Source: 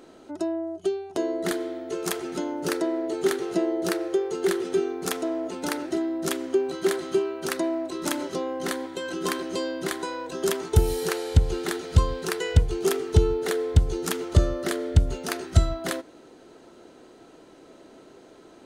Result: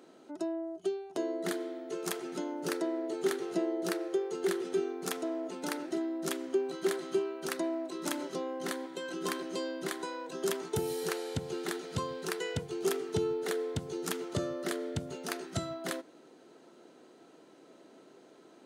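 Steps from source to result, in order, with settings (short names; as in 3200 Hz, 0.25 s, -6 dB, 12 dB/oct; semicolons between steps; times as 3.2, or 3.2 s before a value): HPF 140 Hz 24 dB/oct; gain -7 dB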